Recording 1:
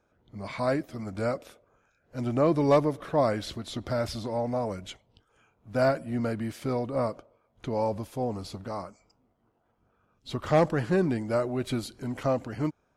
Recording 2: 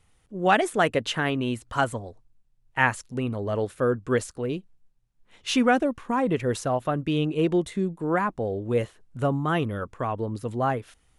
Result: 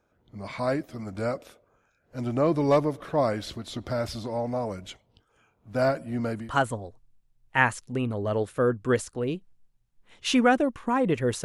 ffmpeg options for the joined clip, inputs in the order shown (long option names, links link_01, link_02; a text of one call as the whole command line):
ffmpeg -i cue0.wav -i cue1.wav -filter_complex "[0:a]apad=whole_dur=11.44,atrim=end=11.44,atrim=end=6.53,asetpts=PTS-STARTPTS[link_01];[1:a]atrim=start=1.57:end=6.66,asetpts=PTS-STARTPTS[link_02];[link_01][link_02]acrossfade=duration=0.18:curve1=tri:curve2=tri" out.wav